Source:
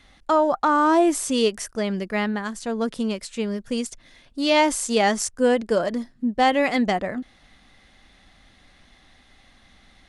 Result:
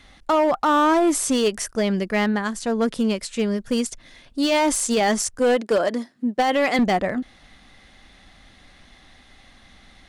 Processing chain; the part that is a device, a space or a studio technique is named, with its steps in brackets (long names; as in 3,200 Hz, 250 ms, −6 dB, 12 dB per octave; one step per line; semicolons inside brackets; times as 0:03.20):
0:05.39–0:06.79: high-pass filter 260 Hz 12 dB per octave
limiter into clipper (brickwall limiter −14 dBFS, peak gain reduction 7 dB; hard clipping −18 dBFS, distortion −18 dB)
level +4 dB